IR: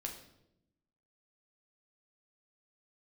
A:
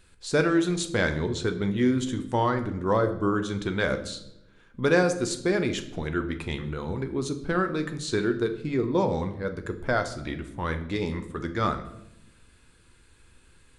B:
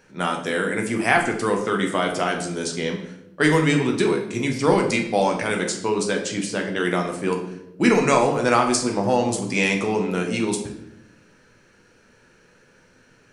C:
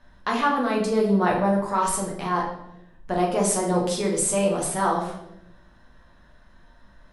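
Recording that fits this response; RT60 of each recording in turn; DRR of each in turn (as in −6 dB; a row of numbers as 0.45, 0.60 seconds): B; 0.85, 0.85, 0.85 seconds; 7.0, 1.5, −3.0 decibels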